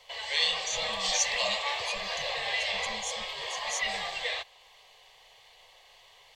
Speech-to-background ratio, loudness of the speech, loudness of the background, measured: -7.0 dB, -37.0 LUFS, -30.0 LUFS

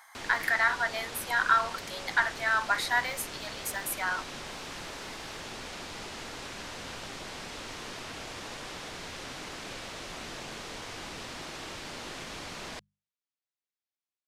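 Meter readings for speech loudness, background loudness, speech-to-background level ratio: -29.0 LUFS, -40.0 LUFS, 11.0 dB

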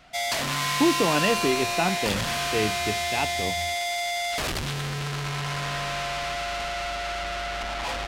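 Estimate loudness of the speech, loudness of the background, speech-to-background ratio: -27.0 LUFS, -27.0 LUFS, 0.0 dB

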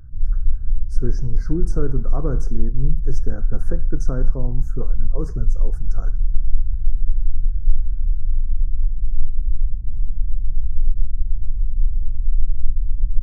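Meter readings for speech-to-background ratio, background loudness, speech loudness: -3.5 dB, -27.0 LUFS, -30.5 LUFS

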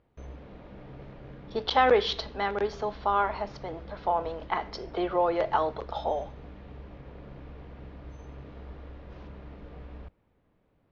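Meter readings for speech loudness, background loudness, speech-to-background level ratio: -28.5 LUFS, -46.5 LUFS, 18.0 dB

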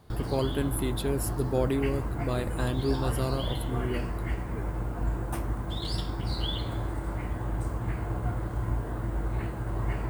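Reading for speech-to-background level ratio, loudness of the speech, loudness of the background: 1.5 dB, -31.5 LUFS, -33.0 LUFS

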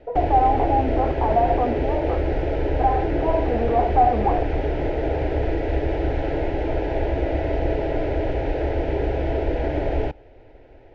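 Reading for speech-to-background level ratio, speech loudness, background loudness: 1.5 dB, -23.0 LUFS, -24.5 LUFS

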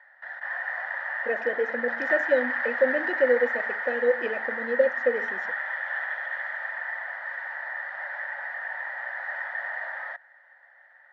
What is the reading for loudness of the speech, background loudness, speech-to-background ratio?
-27.0 LUFS, -30.0 LUFS, 3.0 dB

